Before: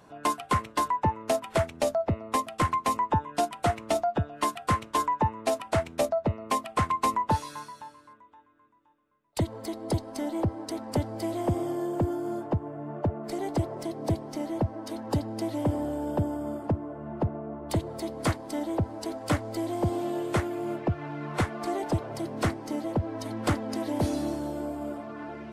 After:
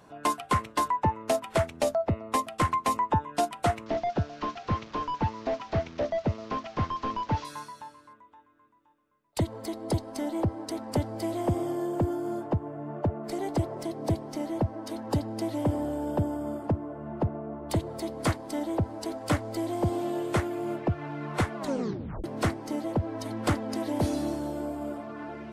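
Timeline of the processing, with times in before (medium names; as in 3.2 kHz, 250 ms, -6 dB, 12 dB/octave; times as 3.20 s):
3.86–7.45 s: one-bit delta coder 32 kbps, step -43.5 dBFS
21.57 s: tape stop 0.67 s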